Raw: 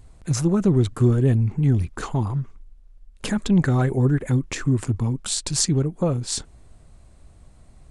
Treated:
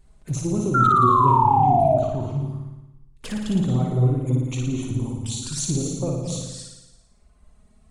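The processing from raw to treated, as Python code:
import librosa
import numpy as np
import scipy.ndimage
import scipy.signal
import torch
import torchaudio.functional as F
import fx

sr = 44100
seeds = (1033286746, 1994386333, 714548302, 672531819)

p1 = fx.rev_gated(x, sr, seeds[0], gate_ms=290, shape='rising', drr_db=3.0)
p2 = fx.env_flanger(p1, sr, rest_ms=5.8, full_db=-18.5)
p3 = fx.lowpass(p2, sr, hz=2700.0, slope=6, at=(1.89, 2.4))
p4 = 10.0 ** (-16.0 / 20.0) * np.tanh(p3 / 10.0 ** (-16.0 / 20.0))
p5 = p3 + (p4 * librosa.db_to_amplitude(-9.0))
p6 = fx.spec_paint(p5, sr, seeds[1], shape='fall', start_s=0.74, length_s=1.24, low_hz=610.0, high_hz=1400.0, level_db=-12.0)
p7 = fx.dereverb_blind(p6, sr, rt60_s=1.2)
p8 = p7 + fx.room_flutter(p7, sr, wall_m=9.7, rt60_s=1.0, dry=0)
y = p8 * librosa.db_to_amplitude(-6.5)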